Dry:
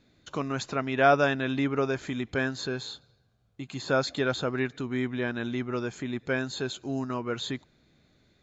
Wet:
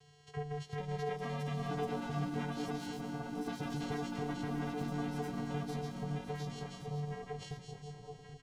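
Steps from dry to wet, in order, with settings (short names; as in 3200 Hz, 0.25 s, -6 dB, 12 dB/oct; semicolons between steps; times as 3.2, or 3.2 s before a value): on a send: split-band echo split 940 Hz, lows 0.781 s, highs 0.216 s, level -12.5 dB; on the sum: chorus 0.24 Hz, delay 16.5 ms, depth 3.4 ms; compressor 3:1, threshold -39 dBFS, peak gain reduction 16 dB; added noise white -55 dBFS; LFO notch sine 7.8 Hz 450–1600 Hz; vocoder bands 4, square 147 Hz; echoes that change speed 0.508 s, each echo +4 st, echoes 3; comb 2.6 ms, depth 69%; echo 1.119 s -9 dB; gain +4.5 dB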